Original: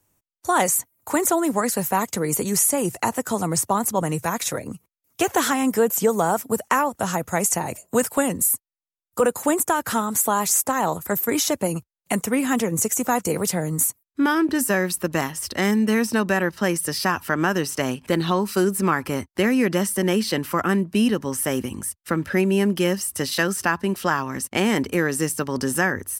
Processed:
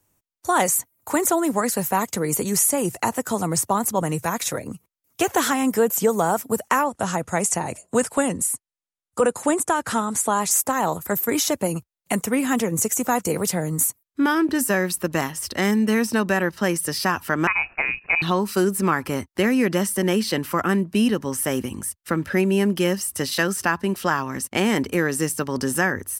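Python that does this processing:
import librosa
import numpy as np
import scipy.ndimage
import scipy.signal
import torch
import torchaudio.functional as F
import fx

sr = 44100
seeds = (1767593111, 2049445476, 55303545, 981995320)

y = fx.cheby1_lowpass(x, sr, hz=9800.0, order=3, at=(6.84, 10.51))
y = fx.freq_invert(y, sr, carrier_hz=2700, at=(17.47, 18.22))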